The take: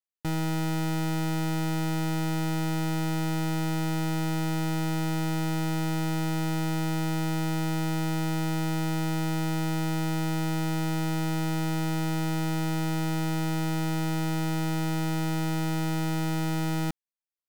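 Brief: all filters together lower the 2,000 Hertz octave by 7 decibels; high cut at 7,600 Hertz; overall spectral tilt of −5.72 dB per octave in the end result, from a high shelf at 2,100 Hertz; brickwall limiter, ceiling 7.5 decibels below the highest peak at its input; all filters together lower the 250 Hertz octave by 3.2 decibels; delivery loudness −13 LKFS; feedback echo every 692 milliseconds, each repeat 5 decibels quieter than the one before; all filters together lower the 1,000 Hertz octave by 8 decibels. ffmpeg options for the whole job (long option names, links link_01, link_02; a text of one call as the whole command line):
ffmpeg -i in.wav -af "lowpass=7600,equalizer=frequency=250:width_type=o:gain=-5.5,equalizer=frequency=1000:width_type=o:gain=-9,equalizer=frequency=2000:width_type=o:gain=-4,highshelf=frequency=2100:gain=-3,alimiter=level_in=10dB:limit=-24dB:level=0:latency=1,volume=-10dB,aecho=1:1:692|1384|2076|2768|3460|4152|4844:0.562|0.315|0.176|0.0988|0.0553|0.031|0.0173,volume=28dB" out.wav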